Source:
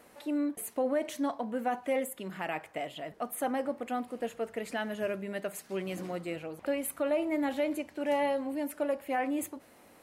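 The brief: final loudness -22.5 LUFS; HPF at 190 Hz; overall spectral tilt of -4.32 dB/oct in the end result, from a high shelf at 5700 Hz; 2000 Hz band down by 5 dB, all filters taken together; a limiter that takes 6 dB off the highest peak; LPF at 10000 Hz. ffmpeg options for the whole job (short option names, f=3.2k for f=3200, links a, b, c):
-af "highpass=190,lowpass=10k,equalizer=f=2k:t=o:g=-6.5,highshelf=f=5.7k:g=3,volume=14dB,alimiter=limit=-12.5dB:level=0:latency=1"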